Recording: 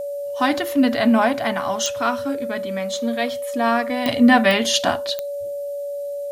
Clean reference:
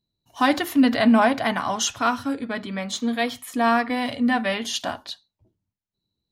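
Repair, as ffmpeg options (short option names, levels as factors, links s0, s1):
-af "adeclick=t=4,bandreject=f=570:w=30,agate=range=0.0891:threshold=0.1,asetnsamples=n=441:p=0,asendcmd='4.06 volume volume -8dB',volume=1"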